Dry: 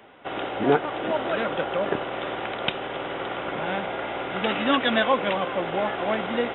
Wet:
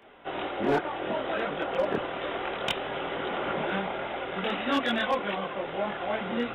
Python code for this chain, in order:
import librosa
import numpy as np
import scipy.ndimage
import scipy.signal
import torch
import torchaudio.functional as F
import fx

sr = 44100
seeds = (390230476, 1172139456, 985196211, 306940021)

y = fx.rider(x, sr, range_db=4, speed_s=2.0)
y = fx.chorus_voices(y, sr, voices=6, hz=1.2, base_ms=23, depth_ms=3.0, mix_pct=55)
y = np.clip(10.0 ** (17.5 / 20.0) * y, -1.0, 1.0) / 10.0 ** (17.5 / 20.0)
y = F.gain(torch.from_numpy(y), -1.5).numpy()